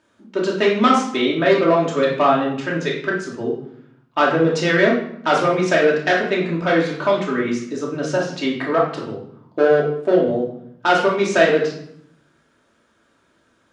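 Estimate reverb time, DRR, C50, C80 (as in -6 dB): 0.70 s, -3.5 dB, 4.5 dB, 8.5 dB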